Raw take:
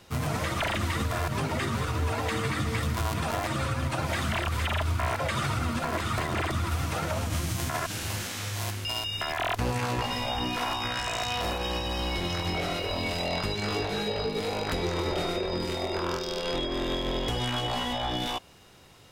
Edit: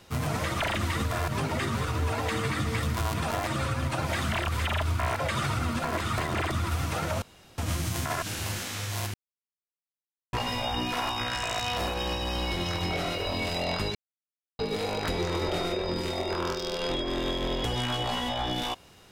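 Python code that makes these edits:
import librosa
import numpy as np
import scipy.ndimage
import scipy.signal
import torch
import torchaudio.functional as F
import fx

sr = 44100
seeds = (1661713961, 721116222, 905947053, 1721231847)

y = fx.edit(x, sr, fx.insert_room_tone(at_s=7.22, length_s=0.36),
    fx.silence(start_s=8.78, length_s=1.19),
    fx.silence(start_s=13.59, length_s=0.64), tone=tone)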